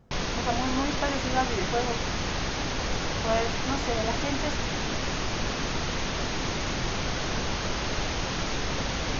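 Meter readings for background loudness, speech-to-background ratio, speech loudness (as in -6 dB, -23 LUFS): -29.5 LUFS, -2.0 dB, -31.5 LUFS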